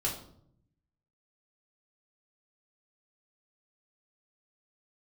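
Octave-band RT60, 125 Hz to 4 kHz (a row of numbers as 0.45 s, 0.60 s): 1.3 s, 1.0 s, 0.75 s, 0.60 s, 0.45 s, 0.45 s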